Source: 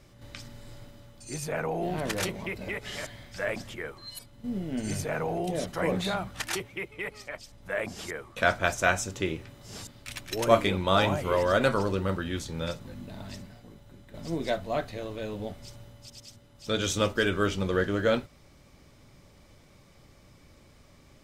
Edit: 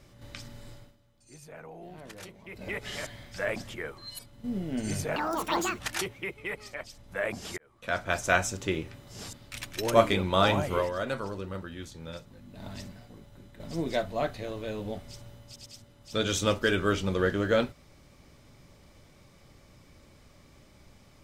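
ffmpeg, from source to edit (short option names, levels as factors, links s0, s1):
-filter_complex "[0:a]asplit=8[s0][s1][s2][s3][s4][s5][s6][s7];[s0]atrim=end=0.97,asetpts=PTS-STARTPTS,afade=t=out:st=0.67:d=0.3:silence=0.177828[s8];[s1]atrim=start=0.97:end=2.45,asetpts=PTS-STARTPTS,volume=0.178[s9];[s2]atrim=start=2.45:end=5.164,asetpts=PTS-STARTPTS,afade=t=in:d=0.3:silence=0.177828[s10];[s3]atrim=start=5.16:end=6.33,asetpts=PTS-STARTPTS,asetrate=82026,aresample=44100,atrim=end_sample=27740,asetpts=PTS-STARTPTS[s11];[s4]atrim=start=6.326:end=8.12,asetpts=PTS-STARTPTS,afade=t=out:st=1.79:d=0.004:c=hsin[s12];[s5]atrim=start=8.12:end=11.5,asetpts=PTS-STARTPTS,afade=t=in:d=0.74,afade=t=out:st=3.19:d=0.19:c=qua:silence=0.375837[s13];[s6]atrim=start=11.5:end=12.99,asetpts=PTS-STARTPTS,volume=0.376[s14];[s7]atrim=start=12.99,asetpts=PTS-STARTPTS,afade=t=in:d=0.19:c=qua:silence=0.375837[s15];[s8][s9][s10]concat=n=3:v=0:a=1[s16];[s16][s11]acrossfade=d=0.004:c1=hsin:c2=hsin[s17];[s12][s13][s14][s15]concat=n=4:v=0:a=1[s18];[s17][s18]acrossfade=d=0.004:c1=hsin:c2=hsin"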